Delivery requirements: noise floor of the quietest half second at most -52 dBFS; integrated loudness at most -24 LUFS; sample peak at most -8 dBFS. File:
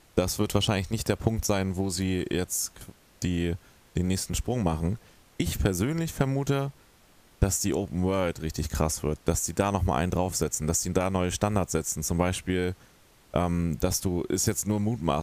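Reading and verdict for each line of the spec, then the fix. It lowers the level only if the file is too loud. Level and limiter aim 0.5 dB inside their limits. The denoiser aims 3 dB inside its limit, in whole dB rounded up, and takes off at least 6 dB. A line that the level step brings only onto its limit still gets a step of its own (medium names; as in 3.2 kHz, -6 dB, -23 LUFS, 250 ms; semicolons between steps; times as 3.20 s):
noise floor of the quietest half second -58 dBFS: pass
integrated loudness -28.0 LUFS: pass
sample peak -10.0 dBFS: pass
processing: none needed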